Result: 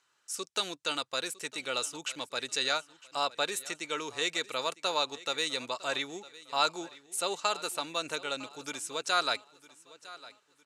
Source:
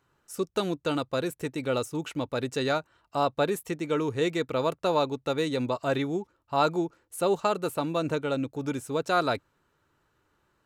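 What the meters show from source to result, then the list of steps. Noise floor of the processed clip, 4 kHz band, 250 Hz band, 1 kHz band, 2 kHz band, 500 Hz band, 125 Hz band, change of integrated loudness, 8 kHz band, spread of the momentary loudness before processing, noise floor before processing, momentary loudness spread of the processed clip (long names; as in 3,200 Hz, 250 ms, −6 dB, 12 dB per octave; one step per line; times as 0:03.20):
−72 dBFS, +6.0 dB, −14.5 dB, −4.0 dB, +1.0 dB, −9.5 dB, −20.5 dB, −3.5 dB, +7.0 dB, 7 LU, −72 dBFS, 11 LU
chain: meter weighting curve ITU-R 468
on a send: repeating echo 956 ms, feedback 36%, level −19 dB
on the sum: level −4 dB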